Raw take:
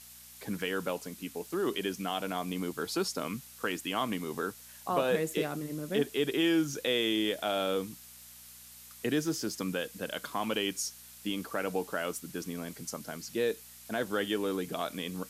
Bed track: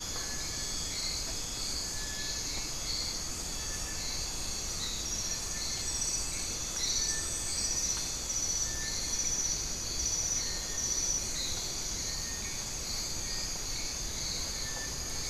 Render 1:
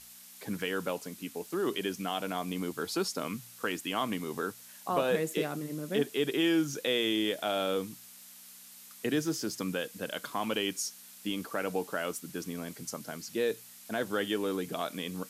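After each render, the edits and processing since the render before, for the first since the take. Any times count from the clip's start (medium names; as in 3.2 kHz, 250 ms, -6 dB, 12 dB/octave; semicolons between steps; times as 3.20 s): de-hum 60 Hz, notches 2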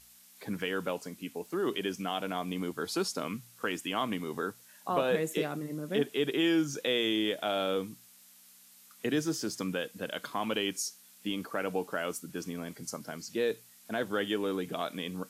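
noise print and reduce 6 dB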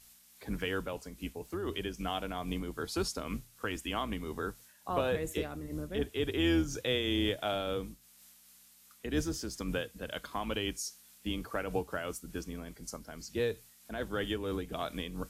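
octave divider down 2 oct, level -3 dB; random flutter of the level, depth 60%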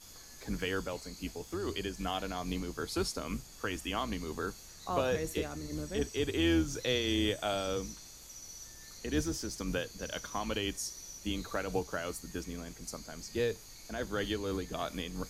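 add bed track -16.5 dB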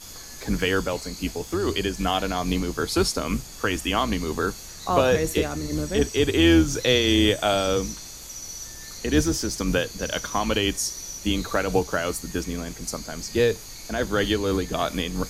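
trim +11.5 dB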